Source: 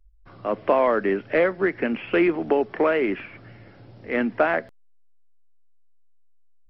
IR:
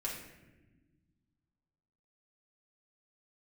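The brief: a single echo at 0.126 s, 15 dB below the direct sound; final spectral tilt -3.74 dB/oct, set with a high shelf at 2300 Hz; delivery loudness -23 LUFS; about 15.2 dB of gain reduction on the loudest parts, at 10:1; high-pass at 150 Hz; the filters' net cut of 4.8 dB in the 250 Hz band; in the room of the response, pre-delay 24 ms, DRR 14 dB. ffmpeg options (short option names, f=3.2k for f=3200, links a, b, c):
-filter_complex "[0:a]highpass=150,equalizer=f=250:t=o:g=-6.5,highshelf=f=2.3k:g=-5,acompressor=threshold=-32dB:ratio=10,aecho=1:1:126:0.178,asplit=2[a][b];[1:a]atrim=start_sample=2205,adelay=24[c];[b][c]afir=irnorm=-1:irlink=0,volume=-16dB[d];[a][d]amix=inputs=2:normalize=0,volume=14dB"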